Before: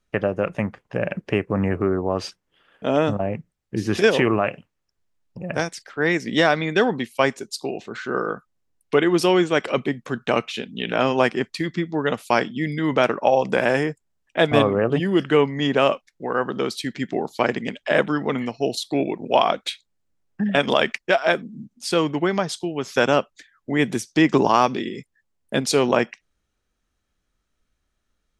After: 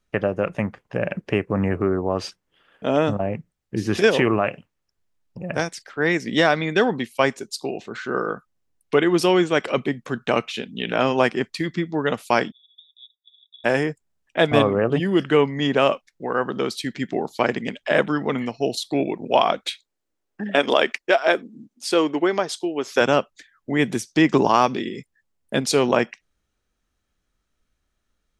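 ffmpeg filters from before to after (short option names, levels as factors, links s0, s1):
-filter_complex "[0:a]asplit=3[s0][s1][s2];[s0]afade=t=out:st=12.5:d=0.02[s3];[s1]asuperpass=centerf=3600:order=20:qfactor=7.7,afade=t=in:st=12.5:d=0.02,afade=t=out:st=13.64:d=0.02[s4];[s2]afade=t=in:st=13.64:d=0.02[s5];[s3][s4][s5]amix=inputs=3:normalize=0,asettb=1/sr,asplit=3[s6][s7][s8];[s6]atrim=end=19.664[s9];[s7]atrim=start=19.66:end=23.01,asetpts=PTS-STARTPTS,afade=t=in:d=0.004:c=qsin,afade=t=out:st=3.346:d=0.004:c=qsin,lowshelf=f=230:t=q:w=1.5:g=-9[s10];[s8]atrim=start=23.006[s11];[s9][s10]acrossfade=d=0.004:c1=hsin:c2=qsin[s12];[s12][s11]acrossfade=d=0.004:c1=qsin:c2=hsin"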